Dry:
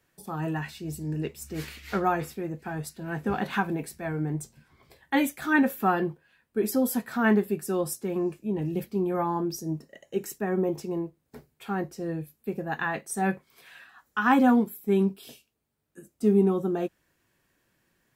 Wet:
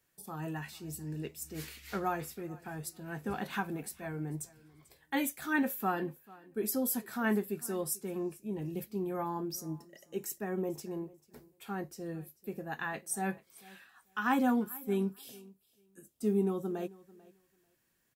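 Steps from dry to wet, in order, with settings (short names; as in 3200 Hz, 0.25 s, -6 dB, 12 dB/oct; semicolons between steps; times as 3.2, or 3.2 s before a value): high shelf 5300 Hz +10 dB; on a send: feedback echo 0.442 s, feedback 16%, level -22 dB; on the sum: gain -8.5 dB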